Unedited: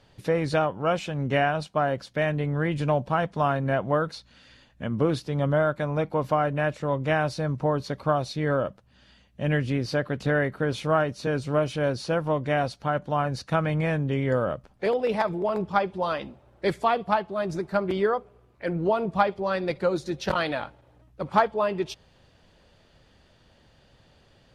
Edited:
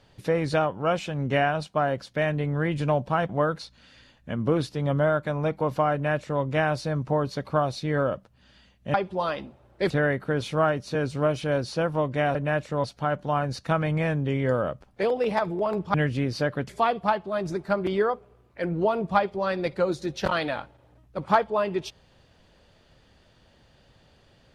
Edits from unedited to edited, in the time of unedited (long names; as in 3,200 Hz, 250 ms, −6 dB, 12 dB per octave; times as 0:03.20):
0:03.29–0:03.82: remove
0:06.46–0:06.95: duplicate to 0:12.67
0:09.47–0:10.22: swap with 0:15.77–0:16.73